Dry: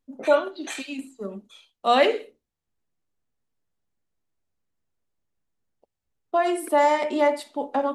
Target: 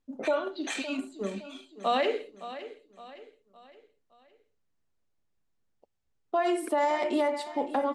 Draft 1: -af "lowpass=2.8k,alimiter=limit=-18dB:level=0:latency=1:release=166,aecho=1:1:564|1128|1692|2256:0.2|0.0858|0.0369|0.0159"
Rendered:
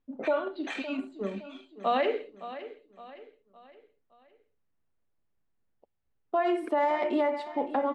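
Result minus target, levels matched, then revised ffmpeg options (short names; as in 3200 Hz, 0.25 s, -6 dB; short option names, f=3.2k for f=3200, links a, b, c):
8000 Hz band -15.5 dB
-af "lowpass=7.8k,alimiter=limit=-18dB:level=0:latency=1:release=166,aecho=1:1:564|1128|1692|2256:0.2|0.0858|0.0369|0.0159"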